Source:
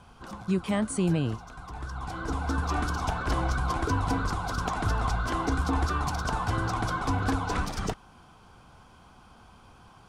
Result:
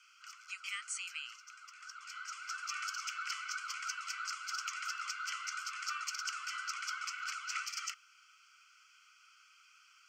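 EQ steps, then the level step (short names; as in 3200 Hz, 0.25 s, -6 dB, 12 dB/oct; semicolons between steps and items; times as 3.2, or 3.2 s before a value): steep high-pass 1300 Hz 96 dB/oct; fixed phaser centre 2500 Hz, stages 8; +2.5 dB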